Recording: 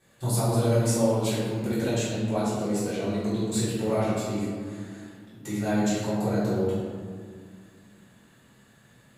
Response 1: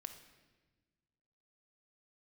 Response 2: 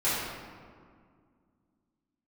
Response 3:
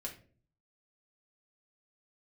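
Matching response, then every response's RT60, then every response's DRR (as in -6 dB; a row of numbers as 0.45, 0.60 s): 2; 1.3, 2.0, 0.45 s; 6.0, -14.5, -1.5 dB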